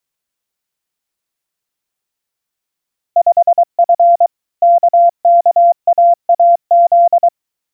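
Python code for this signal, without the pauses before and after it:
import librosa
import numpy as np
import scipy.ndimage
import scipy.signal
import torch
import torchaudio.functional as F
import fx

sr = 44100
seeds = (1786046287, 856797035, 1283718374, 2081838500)

y = fx.morse(sr, text='5F KKAAZ', wpm=23, hz=689.0, level_db=-4.5)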